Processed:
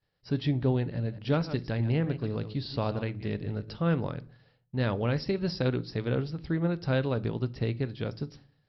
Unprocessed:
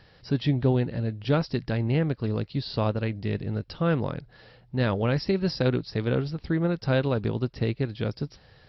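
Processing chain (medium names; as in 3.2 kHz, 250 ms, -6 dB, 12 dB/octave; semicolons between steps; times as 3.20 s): 0.94–3.77 s: chunks repeated in reverse 123 ms, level -12 dB; expander -43 dBFS; simulated room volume 400 m³, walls furnished, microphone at 0.31 m; trim -4 dB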